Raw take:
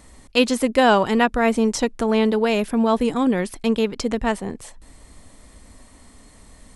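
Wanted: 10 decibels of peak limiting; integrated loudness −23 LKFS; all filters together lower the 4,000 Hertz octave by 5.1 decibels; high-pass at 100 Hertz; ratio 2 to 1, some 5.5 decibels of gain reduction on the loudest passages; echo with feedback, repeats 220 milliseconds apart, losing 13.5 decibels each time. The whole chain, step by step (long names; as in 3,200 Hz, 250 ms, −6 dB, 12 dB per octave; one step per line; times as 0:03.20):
high-pass filter 100 Hz
parametric band 4,000 Hz −7.5 dB
downward compressor 2 to 1, threshold −21 dBFS
brickwall limiter −18.5 dBFS
repeating echo 220 ms, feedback 21%, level −13.5 dB
level +5.5 dB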